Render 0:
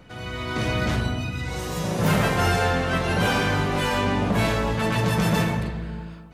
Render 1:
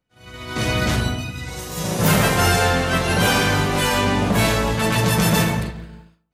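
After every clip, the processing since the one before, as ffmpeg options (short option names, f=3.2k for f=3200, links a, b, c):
-af "agate=range=-33dB:threshold=-23dB:ratio=3:detection=peak,highshelf=f=4.9k:g=10.5,volume=3.5dB"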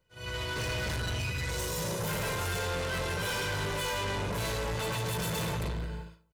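-af "aecho=1:1:2:0.7,areverse,acompressor=threshold=-25dB:ratio=6,areverse,asoftclip=type=tanh:threshold=-32dB,volume=2dB"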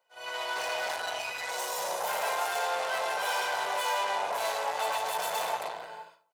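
-af "highpass=f=740:t=q:w=4.9"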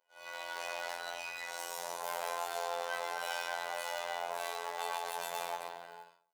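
-af "acrusher=bits=5:mode=log:mix=0:aa=0.000001,afftfilt=real='hypot(re,im)*cos(PI*b)':imag='0':win_size=2048:overlap=0.75,volume=-4dB"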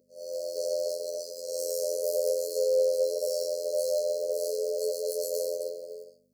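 -af "aeval=exprs='val(0)+0.00112*(sin(2*PI*50*n/s)+sin(2*PI*2*50*n/s)/2+sin(2*PI*3*50*n/s)/3+sin(2*PI*4*50*n/s)/4+sin(2*PI*5*50*n/s)/5)':c=same,highpass=f=470:t=q:w=4.8,afftfilt=real='re*(1-between(b*sr/4096,660,4100))':imag='im*(1-between(b*sr/4096,660,4100))':win_size=4096:overlap=0.75,volume=8dB"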